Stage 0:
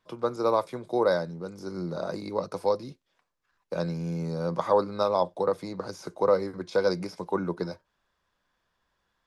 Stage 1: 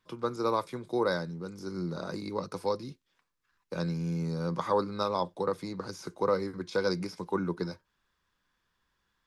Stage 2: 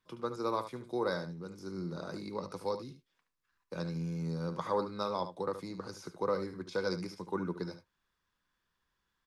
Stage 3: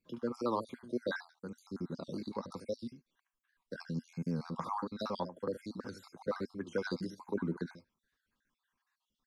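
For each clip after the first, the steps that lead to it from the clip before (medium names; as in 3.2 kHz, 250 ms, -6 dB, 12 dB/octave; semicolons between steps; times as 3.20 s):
peaking EQ 640 Hz -9.5 dB 0.83 oct
delay 73 ms -11 dB; trim -5 dB
random holes in the spectrogram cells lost 50%; small resonant body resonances 240/1600 Hz, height 10 dB, ringing for 50 ms; warped record 78 rpm, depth 100 cents; trim -1 dB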